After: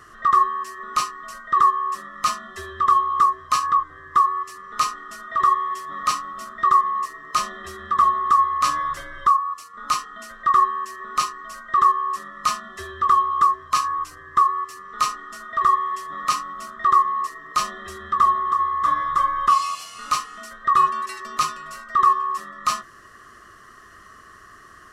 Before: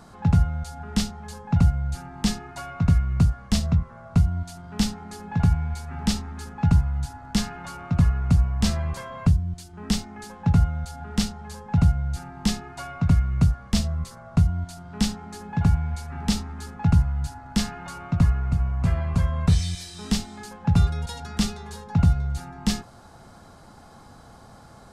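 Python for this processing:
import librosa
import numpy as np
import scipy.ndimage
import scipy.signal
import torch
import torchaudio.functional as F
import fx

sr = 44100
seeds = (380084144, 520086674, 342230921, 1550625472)

y = fx.band_swap(x, sr, width_hz=1000)
y = F.gain(torch.from_numpy(y), 1.0).numpy()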